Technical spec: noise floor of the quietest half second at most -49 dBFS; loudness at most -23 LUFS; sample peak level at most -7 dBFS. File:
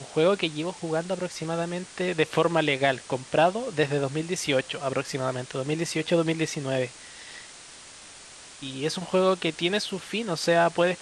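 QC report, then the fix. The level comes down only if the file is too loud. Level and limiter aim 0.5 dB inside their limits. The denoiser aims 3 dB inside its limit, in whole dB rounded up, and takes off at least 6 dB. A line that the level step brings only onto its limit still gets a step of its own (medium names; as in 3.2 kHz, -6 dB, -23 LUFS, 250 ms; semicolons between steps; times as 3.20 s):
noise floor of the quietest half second -46 dBFS: fail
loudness -26.5 LUFS: pass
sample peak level -8.0 dBFS: pass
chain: noise reduction 6 dB, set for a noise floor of -46 dBFS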